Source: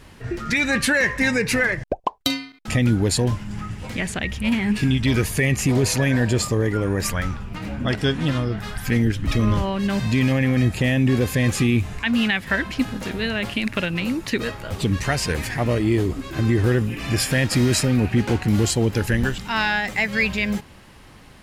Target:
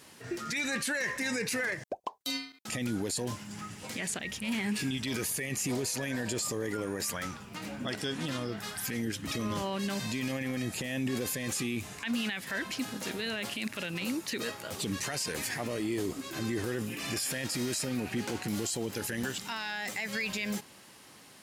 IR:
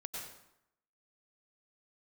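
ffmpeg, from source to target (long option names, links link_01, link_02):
-af "highpass=160,bass=frequency=250:gain=-3,treble=frequency=4000:gain=10,alimiter=limit=-17dB:level=0:latency=1:release=23,volume=-7dB"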